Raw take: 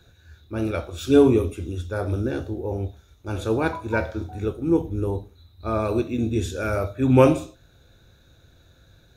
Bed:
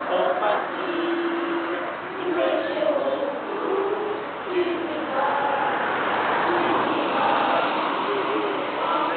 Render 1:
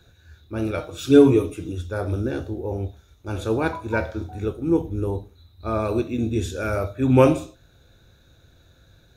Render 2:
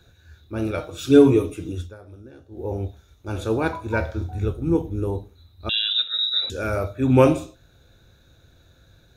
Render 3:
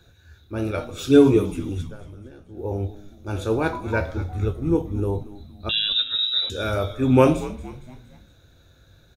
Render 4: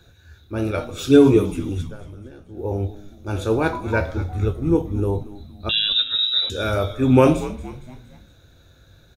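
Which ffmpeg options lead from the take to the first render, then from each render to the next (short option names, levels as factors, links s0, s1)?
-filter_complex "[0:a]asettb=1/sr,asplit=3[s0][s1][s2];[s0]atrim=end=0.774[s3];[s1]atrim=start=0.77:end=1.72,asetpts=PTS-STARTPTS,afade=t=in:d=0.004:c=qsin,afade=t=out:st=0.946:d=0.004:c=qsin,aecho=1:1:6.5:0.65,atrim=end_sample=41895[s4];[s2]atrim=start=1.716[s5];[s3][s4]acrossfade=d=0.004:c1=hsin:c2=qsin[s6];[s6][s5]acrossfade=d=0.004:c1=qsin:c2=hsin"
-filter_complex "[0:a]asettb=1/sr,asplit=3[s0][s1][s2];[s0]atrim=end=3.694[s3];[s1]atrim=start=3.69:end=4.75,asetpts=PTS-STARTPTS,afade=t=in:d=0.004:c=qsin,afade=t=out:st=1.056:d=0.004:c=qsin,asubboost=boost=7.5:cutoff=160[s4];[s2]atrim=start=4.746[s5];[s3][s4]acrossfade=d=0.004:c1=hsin:c2=qsin[s6];[s6][s5]acrossfade=d=0.004:c1=qsin:c2=hsin,asettb=1/sr,asplit=3[s7][s8][s9];[s7]atrim=end=5.694[s10];[s8]atrim=start=5.69:end=6.5,asetpts=PTS-STARTPTS,afade=t=in:d=0.004:c=qsin,afade=t=out:st=0.806:d=0.004:c=qsin,lowpass=f=3400:t=q:w=0.5098,lowpass=f=3400:t=q:w=0.6013,lowpass=f=3400:t=q:w=0.9,lowpass=f=3400:t=q:w=2.563,afreqshift=-4000[s11];[s9]atrim=start=6.496[s12];[s10][s11]acrossfade=d=0.004:c1=hsin:c2=qsin[s13];[s13][s12]acrossfade=d=0.004:c1=qsin:c2=hsin,asplit=3[s14][s15][s16];[s14]atrim=end=1.99,asetpts=PTS-STARTPTS,afade=t=out:st=1.84:d=0.15:c=qua:silence=0.11885[s17];[s15]atrim=start=1.99:end=2.47,asetpts=PTS-STARTPTS,volume=0.119[s18];[s16]atrim=start=2.47,asetpts=PTS-STARTPTS,afade=t=in:d=0.15:c=qua:silence=0.11885[s19];[s17][s18][s19]concat=n=3:v=0:a=1"
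-filter_complex "[0:a]asplit=2[s0][s1];[s1]adelay=20,volume=0.2[s2];[s0][s2]amix=inputs=2:normalize=0,asplit=5[s3][s4][s5][s6][s7];[s4]adelay=231,afreqshift=-91,volume=0.158[s8];[s5]adelay=462,afreqshift=-182,volume=0.0776[s9];[s6]adelay=693,afreqshift=-273,volume=0.038[s10];[s7]adelay=924,afreqshift=-364,volume=0.0186[s11];[s3][s8][s9][s10][s11]amix=inputs=5:normalize=0"
-af "volume=1.33,alimiter=limit=0.794:level=0:latency=1"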